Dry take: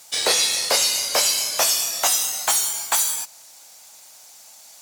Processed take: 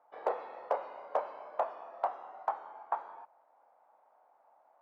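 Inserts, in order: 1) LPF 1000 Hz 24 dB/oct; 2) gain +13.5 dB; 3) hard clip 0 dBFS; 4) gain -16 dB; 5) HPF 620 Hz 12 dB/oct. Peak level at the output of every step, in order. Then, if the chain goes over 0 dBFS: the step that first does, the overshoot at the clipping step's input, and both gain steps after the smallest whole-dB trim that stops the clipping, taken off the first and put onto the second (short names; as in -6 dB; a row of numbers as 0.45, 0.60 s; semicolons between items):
-10.5, +3.0, 0.0, -16.0, -17.0 dBFS; step 2, 3.0 dB; step 2 +10.5 dB, step 4 -13 dB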